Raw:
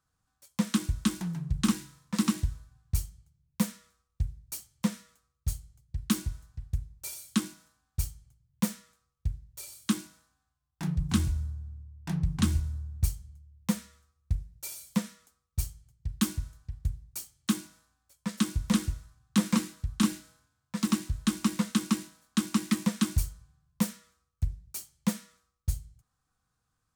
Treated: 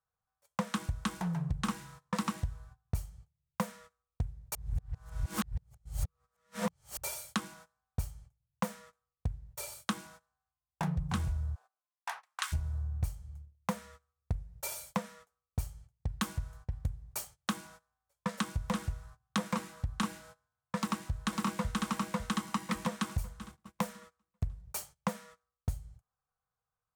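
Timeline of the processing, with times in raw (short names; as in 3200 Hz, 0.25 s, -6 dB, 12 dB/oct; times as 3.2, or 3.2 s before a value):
4.55–6.97 reverse
11.54–12.52 HPF 610 Hz -> 1300 Hz 24 dB/oct
20.77–21.86 echo throw 0.55 s, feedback 35%, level -0.5 dB
whole clip: gate -52 dBFS, range -20 dB; EQ curve 170 Hz 0 dB, 300 Hz -11 dB, 460 Hz +8 dB, 790 Hz +9 dB, 4400 Hz -5 dB; compressor 4:1, threshold -37 dBFS; gain +5.5 dB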